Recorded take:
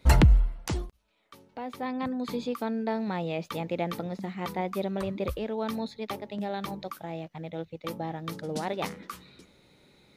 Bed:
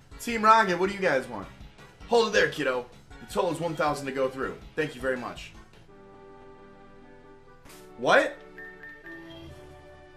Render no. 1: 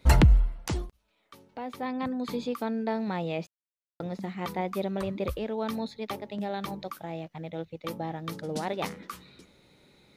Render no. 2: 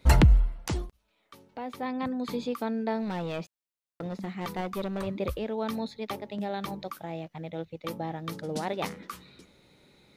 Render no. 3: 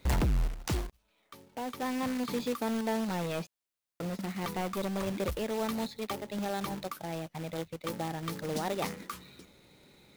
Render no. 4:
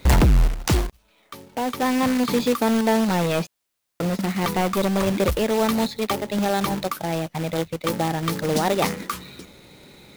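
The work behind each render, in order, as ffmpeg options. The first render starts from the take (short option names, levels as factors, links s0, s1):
-filter_complex "[0:a]asplit=3[s0][s1][s2];[s0]atrim=end=3.47,asetpts=PTS-STARTPTS,afade=t=out:st=3.466:d=0.004:c=hsin[s3];[s1]atrim=start=3.47:end=4,asetpts=PTS-STARTPTS,volume=0[s4];[s2]atrim=start=4,asetpts=PTS-STARTPTS,afade=t=in:d=0.004:c=hsin[s5];[s3][s4][s5]concat=n=3:v=0:a=1"
-filter_complex "[0:a]asettb=1/sr,asplit=3[s0][s1][s2];[s0]atrim=end=3.024[s3];[s1]atrim=start=3.02:end=5.07,asetpts=PTS-STARTPTS,afade=t=in:d=0.004:c=qsin,afade=t=out:st=2.046:d=0.004:c=qsin,aeval=exprs='clip(val(0),-1,0.0299)':c=same[s4];[s2]atrim=start=5.066[s5];[s3][s4]acrossfade=d=0.004:c1=hsin:c2=qsin[s6];[s6][s5]acrossfade=d=0.004:c1=qsin:c2=hsin"
-af "asoftclip=type=tanh:threshold=0.0531,acrusher=bits=2:mode=log:mix=0:aa=0.000001"
-af "volume=3.98"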